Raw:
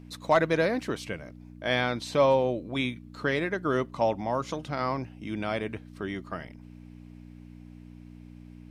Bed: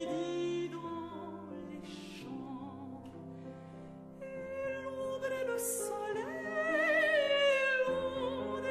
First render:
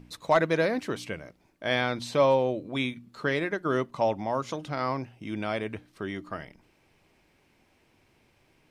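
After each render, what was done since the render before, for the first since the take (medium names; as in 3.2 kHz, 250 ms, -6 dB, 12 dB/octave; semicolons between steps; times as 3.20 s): de-hum 60 Hz, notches 5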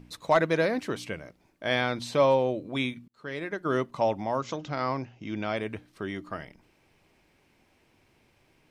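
3.08–3.73 s: fade in; 4.38–5.57 s: careless resampling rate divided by 3×, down none, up filtered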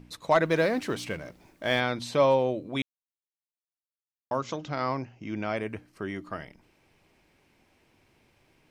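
0.45–1.80 s: companding laws mixed up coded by mu; 2.82–4.31 s: mute; 4.95–6.21 s: peaking EQ 3.6 kHz -10.5 dB 0.27 oct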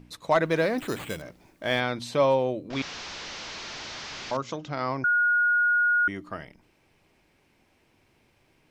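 0.78–1.22 s: careless resampling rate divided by 8×, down none, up hold; 2.70–4.37 s: one-bit delta coder 32 kbps, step -31.5 dBFS; 5.04–6.08 s: bleep 1.44 kHz -19 dBFS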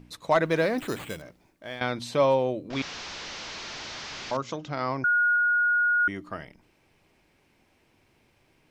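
0.84–1.81 s: fade out, to -14.5 dB; 5.36–6.00 s: distance through air 110 m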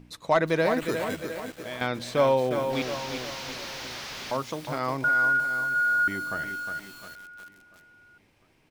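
feedback delay 700 ms, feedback 45%, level -20 dB; bit-crushed delay 358 ms, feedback 55%, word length 7-bit, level -6.5 dB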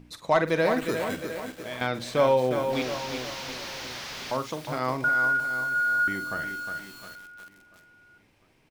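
doubling 47 ms -12 dB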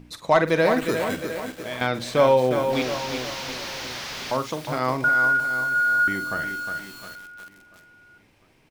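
trim +4 dB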